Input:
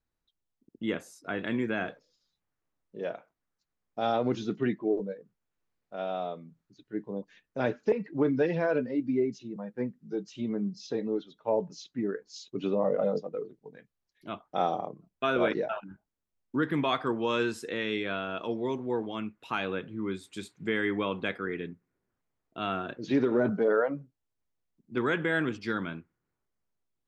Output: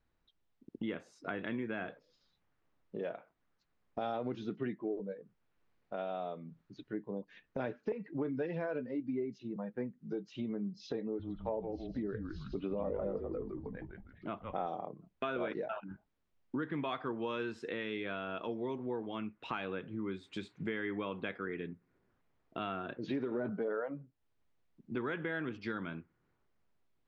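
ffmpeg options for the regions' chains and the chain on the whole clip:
-filter_complex "[0:a]asettb=1/sr,asplit=3[a][b][c];[a]atrim=end=11.034[d];[b]atrim=start=11.03:end=14.67,asetpts=PTS-STARTPTS,afade=t=in:d=0.004:c=qsin,afade=t=out:st=3.636:d=0.004:c=qsin,lowpass=2.5k,asplit=6[e][f][g][h][i][j];[f]adelay=159,afreqshift=-120,volume=-7dB[k];[g]adelay=318,afreqshift=-240,volume=-15dB[l];[h]adelay=477,afreqshift=-360,volume=-22.9dB[m];[i]adelay=636,afreqshift=-480,volume=-30.9dB[n];[j]adelay=795,afreqshift=-600,volume=-38.8dB[o];[e][k][l][m][n][o]amix=inputs=6:normalize=0,atrim=end_sample=160524[p];[c]atrim=start=14.666[q];[d][p]acrossfade=d=0.004:c1=hsin:c2=qsin[r];[r][q]acrossfade=d=0.004:c1=qsin:c2=hsin,acompressor=threshold=-47dB:ratio=3,lowpass=3.5k,volume=7dB"

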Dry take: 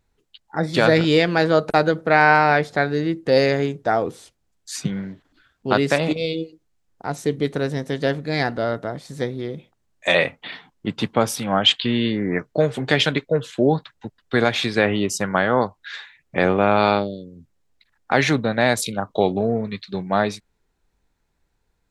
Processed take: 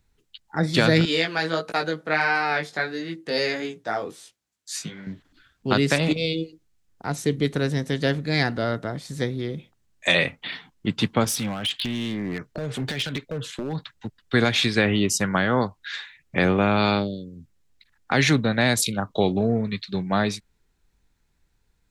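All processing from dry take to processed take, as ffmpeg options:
-filter_complex "[0:a]asettb=1/sr,asplit=3[a][b][c];[a]atrim=end=1.054[d];[b]atrim=start=1.05:end=5.07,asetpts=PTS-STARTPTS,afade=t=in:d=0.004:c=qsin,afade=t=out:st=4.016:d=0.004:c=qsin,flanger=delay=17:depth=2.8:speed=1.5,highpass=f=460:p=1[e];[c]atrim=start=5.066[f];[d][e]acrossfade=d=0.004:c1=hsin:c2=qsin[g];[g][f]acrossfade=d=0.004:c1=qsin:c2=hsin,asettb=1/sr,asplit=3[h][i][j];[h]atrim=end=11.244[k];[i]atrim=start=11.24:end=14.21,asetpts=PTS-STARTPTS,afade=t=in:d=0.004:c=qsin,afade=t=out:st=2.966:d=0.004:c=qsin,acompressor=threshold=-22dB:ratio=12:attack=3.2:release=140:knee=1:detection=peak,volume=23dB,asoftclip=hard,volume=-23dB[l];[j]atrim=start=14.206[m];[k][l]acrossfade=d=0.004:c1=hsin:c2=qsin[n];[n][m]acrossfade=d=0.004:c1=qsin:c2=hsin,equalizer=f=640:w=0.61:g=-7,acrossover=split=420|3000[o][p][q];[p]acompressor=threshold=-22dB:ratio=6[r];[o][r][q]amix=inputs=3:normalize=0,volume=3dB"

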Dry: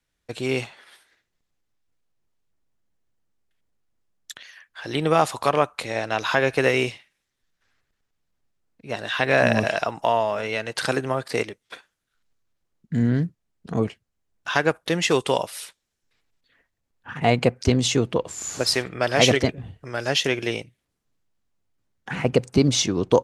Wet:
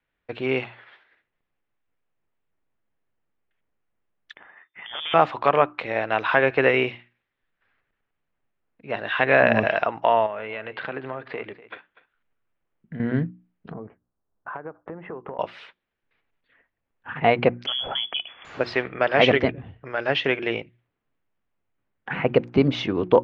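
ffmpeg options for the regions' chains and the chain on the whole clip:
-filter_complex "[0:a]asettb=1/sr,asplit=3[a][b][c];[a]atrim=end=4.364[d];[b]atrim=start=4.36:end=5.14,asetpts=PTS-STARTPTS,afade=t=in:d=0.004:c=qsin,afade=t=out:st=0.776:d=0.004:c=qsin,aeval=exprs='(tanh(15.8*val(0)+0.8)-tanh(0.8))/15.8':c=same,lowpass=f=3.1k:t=q:w=0.5098,lowpass=f=3.1k:t=q:w=0.6013,lowpass=f=3.1k:t=q:w=0.9,lowpass=f=3.1k:t=q:w=2.563,afreqshift=-3600[e];[c]atrim=start=5.136[f];[d][e]acrossfade=d=0.004:c1=hsin:c2=qsin[g];[g][f]acrossfade=d=0.004:c1=qsin:c2=hsin,asettb=1/sr,asplit=3[h][i][j];[h]atrim=end=10.264[k];[i]atrim=start=10.26:end=13,asetpts=PTS-STARTPTS,afade=t=in:d=0.004:c=qsin,afade=t=out:st=2.736:d=0.004:c=qsin,lowpass=f=4k:w=0.5412,lowpass=f=4k:w=1.3066,acompressor=threshold=-32dB:ratio=2.5:attack=3.2:release=140:knee=1:detection=peak,aecho=1:1:245:0.141,atrim=end_sample=120834[l];[j]atrim=start=12.996[m];[k][l]acrossfade=d=0.004:c1=hsin:c2=qsin[n];[n][m]acrossfade=d=0.004:c1=qsin:c2=hsin,asettb=1/sr,asplit=3[o][p][q];[o]atrim=end=13.724[r];[p]atrim=start=13.72:end=15.39,asetpts=PTS-STARTPTS,afade=t=in:d=0.004:c=qsin,afade=t=out:st=1.666:d=0.004:c=qsin,lowpass=f=1.3k:w=0.5412,lowpass=f=1.3k:w=1.3066,acompressor=threshold=-32dB:ratio=10:attack=3.2:release=140:knee=1:detection=peak[s];[q]atrim=start=15.386[t];[r][s]acrossfade=d=0.004:c1=hsin:c2=qsin[u];[u][t]acrossfade=d=0.004:c1=qsin:c2=hsin,asettb=1/sr,asplit=3[v][w][x];[v]atrim=end=17.664[y];[w]atrim=start=17.66:end=18.45,asetpts=PTS-STARTPTS,afade=t=in:d=0.004:c=qsin,afade=t=out:st=0.786:d=0.004:c=qsin,asubboost=boost=11.5:cutoff=200,acompressor=threshold=-20dB:ratio=3:attack=3.2:release=140:knee=1:detection=peak,lowpass=f=3k:t=q:w=0.5098,lowpass=f=3k:t=q:w=0.6013,lowpass=f=3k:t=q:w=0.9,lowpass=f=3k:t=q:w=2.563,afreqshift=-3500[z];[x]atrim=start=18.446[aa];[y][z]acrossfade=d=0.004:c1=hsin:c2=qsin[ab];[ab][aa]acrossfade=d=0.004:c1=qsin:c2=hsin,lowpass=f=2.8k:w=0.5412,lowpass=f=2.8k:w=1.3066,lowshelf=f=210:g=-7,bandreject=f=60:t=h:w=6,bandreject=f=120:t=h:w=6,bandreject=f=180:t=h:w=6,bandreject=f=240:t=h:w=6,bandreject=f=300:t=h:w=6,bandreject=f=360:t=h:w=6,volume=2.5dB"

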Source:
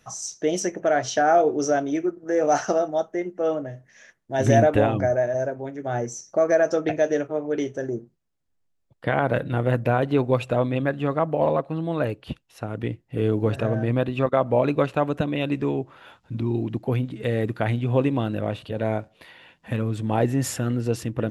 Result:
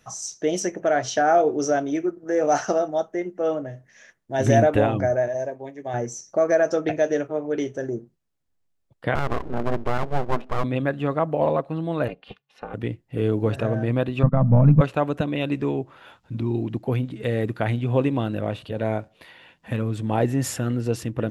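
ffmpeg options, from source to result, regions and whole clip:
-filter_complex "[0:a]asettb=1/sr,asplit=3[a][b][c];[a]atrim=end=5.284[d];[b]atrim=start=5.28:end=5.94,asetpts=PTS-STARTPTS,afade=t=in:d=0.004:c=qsin,afade=t=out:st=0.656:d=0.004:c=qsin,asuperstop=centerf=1400:order=4:qfactor=3.5,lowshelf=f=360:g=-7.5,agate=range=-33dB:threshold=-39dB:ratio=3:release=100:detection=peak[e];[c]atrim=start=5.936[f];[d][e]acrossfade=d=0.004:c1=hsin:c2=qsin[g];[g][f]acrossfade=d=0.004:c1=qsin:c2=hsin,asettb=1/sr,asplit=3[h][i][j];[h]atrim=end=9.154[k];[i]atrim=start=9.15:end=10.64,asetpts=PTS-STARTPTS,afade=t=in:d=0.004:c=qsin,afade=t=out:st=1.486:d=0.004:c=qsin,lowpass=1k,aeval=exprs='abs(val(0))':c=same[l];[j]atrim=start=10.636[m];[k][l]acrossfade=d=0.004:c1=hsin:c2=qsin[n];[n][m]acrossfade=d=0.004:c1=qsin:c2=hsin,asettb=1/sr,asplit=3[o][p][q];[o]atrim=end=12.084[r];[p]atrim=start=12.08:end=12.74,asetpts=PTS-STARTPTS,afade=t=in:d=0.004:c=qsin,afade=t=out:st=0.656:d=0.004:c=qsin,acrossover=split=320 4500:gain=0.224 1 0.112[s][t][u];[s][t][u]amix=inputs=3:normalize=0,aecho=1:1:3.1:0.68,atrim=end_sample=29106,aeval=exprs='val(0)*sin(2*PI*140*n/s)':c=same[v];[q]atrim=start=12.736[w];[r][v]acrossfade=d=0.004:c1=hsin:c2=qsin[x];[x][w]acrossfade=d=0.004:c1=qsin:c2=hsin,asettb=1/sr,asplit=3[y][z][aa];[y]atrim=end=14.234[ab];[z]atrim=start=14.23:end=14.81,asetpts=PTS-STARTPTS,afade=t=in:d=0.004:c=qsin,afade=t=out:st=0.576:d=0.004:c=qsin,aeval=exprs='if(lt(val(0),0),0.708*val(0),val(0))':c=same,lowpass=1.2k,lowshelf=f=260:t=q:w=3:g=13[ac];[aa]atrim=start=14.806[ad];[ab][ac]acrossfade=d=0.004:c1=hsin:c2=qsin[ae];[ae][ad]acrossfade=d=0.004:c1=qsin:c2=hsin"

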